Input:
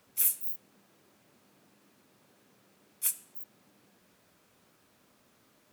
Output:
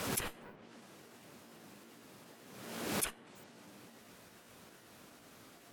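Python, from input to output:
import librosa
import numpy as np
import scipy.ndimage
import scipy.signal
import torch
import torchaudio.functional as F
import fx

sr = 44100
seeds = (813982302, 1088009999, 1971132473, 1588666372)

y = fx.pitch_trill(x, sr, semitones=2.5, every_ms=204)
y = fx.cheby_harmonics(y, sr, harmonics=(4, 5, 6, 7), levels_db=(-22, -12, -30, -15), full_scale_db=-14.0)
y = fx.env_lowpass_down(y, sr, base_hz=1700.0, full_db=-29.0)
y = fx.pre_swell(y, sr, db_per_s=42.0)
y = y * 10.0 ** (8.5 / 20.0)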